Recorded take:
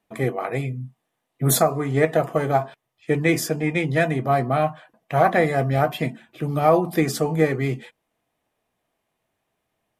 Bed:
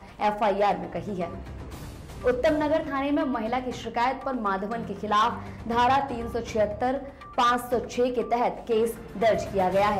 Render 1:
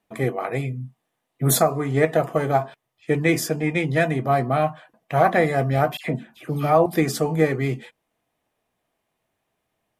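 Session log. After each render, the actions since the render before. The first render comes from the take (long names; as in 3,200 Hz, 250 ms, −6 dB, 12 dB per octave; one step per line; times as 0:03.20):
0:05.97–0:06.86: all-pass dispersion lows, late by 77 ms, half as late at 1,800 Hz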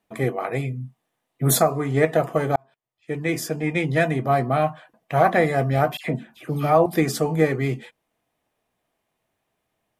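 0:02.56–0:03.84: fade in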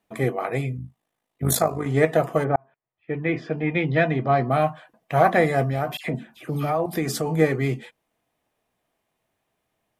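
0:00.77–0:01.86: amplitude modulation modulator 53 Hz, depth 50%
0:02.43–0:04.49: low-pass filter 2,000 Hz → 5,300 Hz 24 dB per octave
0:05.64–0:07.27: downward compressor 3 to 1, threshold −21 dBFS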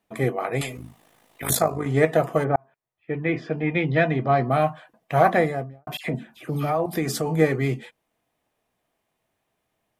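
0:00.61–0:01.50: every bin compressed towards the loudest bin 4 to 1
0:05.27–0:05.87: fade out and dull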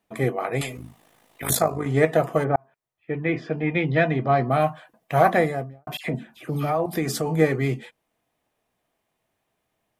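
0:04.60–0:05.74: high-shelf EQ 7,800 Hz +5.5 dB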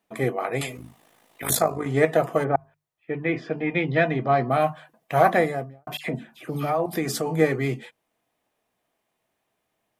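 low-shelf EQ 120 Hz −6.5 dB
mains-hum notches 50/100/150 Hz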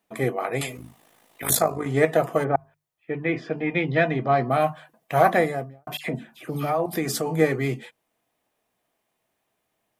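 high-shelf EQ 7,900 Hz +3.5 dB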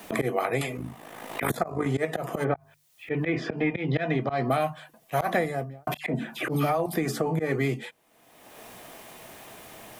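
volume swells 170 ms
multiband upward and downward compressor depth 100%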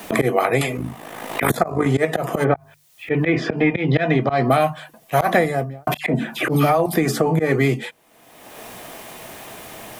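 level +8.5 dB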